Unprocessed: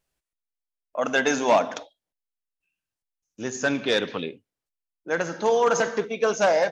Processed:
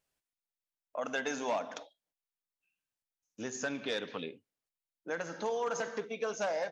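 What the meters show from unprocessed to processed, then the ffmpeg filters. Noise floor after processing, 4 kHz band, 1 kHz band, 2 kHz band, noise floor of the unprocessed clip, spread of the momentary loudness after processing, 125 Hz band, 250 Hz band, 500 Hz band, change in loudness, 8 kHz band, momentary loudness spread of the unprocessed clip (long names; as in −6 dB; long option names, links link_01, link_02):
below −85 dBFS, −11.5 dB, −13.0 dB, −12.0 dB, below −85 dBFS, 11 LU, −13.0 dB, −12.0 dB, −13.0 dB, −13.0 dB, can't be measured, 13 LU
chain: -af "lowshelf=frequency=87:gain=-10.5,bandreject=frequency=360:width=12,acompressor=threshold=-35dB:ratio=2,volume=-3.5dB"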